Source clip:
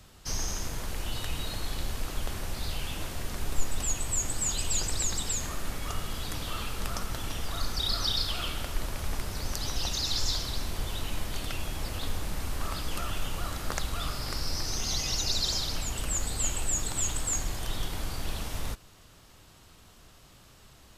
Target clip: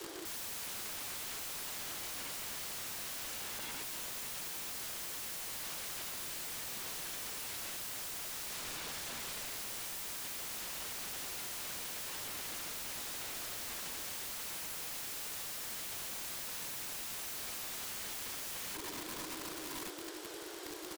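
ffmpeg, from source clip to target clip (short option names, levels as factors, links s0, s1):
-filter_complex "[0:a]asettb=1/sr,asplit=3[s0][s1][s2];[s0]atrim=end=14.944[s3];[s1]atrim=start=14.94:end=15.38,asetpts=PTS-STARTPTS,afade=t=in:d=0.004:c=qsin,afade=t=out:st=0.436:d=0.004:c=qsin,equalizer=f=170:w=2.9:g=-10.5[s4];[s2]atrim=start=15.376[s5];[s3][s4]acrossfade=d=0.004:c1=hsin:c2=qsin[s6];[s6][s5]acrossfade=d=0.004:c1=qsin:c2=hsin,acrusher=bits=4:mode=log:mix=0:aa=0.000001,asettb=1/sr,asplit=3[s7][s8][s9];[s7]atrim=end=8.504[s10];[s8]atrim=start=8.5:end=9.46,asetpts=PTS-STARTPTS,afade=t=in:d=0.004:c=qsin,afade=t=out:st=0.956:d=0.004:c=qsin,lowpass=4100[s11];[s9]atrim=start=9.456[s12];[s10][s11]acrossfade=d=0.004:c1=hsin:c2=qsin[s13];[s13][s12]acrossfade=d=0.004:c1=qsin:c2=hsin,asettb=1/sr,asplit=3[s14][s15][s16];[s14]atrim=end=16.824[s17];[s15]atrim=start=16.82:end=17.26,asetpts=PTS-STARTPTS,afade=t=in:d=0.004:c=qsin,afade=t=out:st=0.436:d=0.004:c=qsin,bandreject=f=2400:w=5.6[s18];[s16]atrim=start=17.256[s19];[s17][s18]acrossfade=d=0.004:c1=hsin:c2=qsin[s20];[s20][s19]acrossfade=d=0.004:c1=qsin:c2=hsin,afreqshift=300,acompressor=threshold=0.0178:ratio=16,aecho=1:1:1153:0.211,alimiter=level_in=2.82:limit=0.0631:level=0:latency=1:release=20,volume=0.355,aeval=exprs='(mod(200*val(0)+1,2)-1)/200':c=same,volume=2.66"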